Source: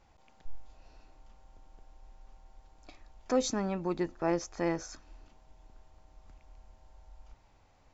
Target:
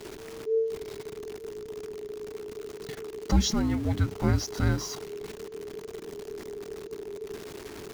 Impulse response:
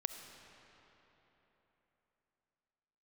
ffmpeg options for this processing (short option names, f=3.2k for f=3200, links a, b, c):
-af "aeval=exprs='val(0)+0.5*0.00794*sgn(val(0))':c=same,afreqshift=-450,volume=5.5dB"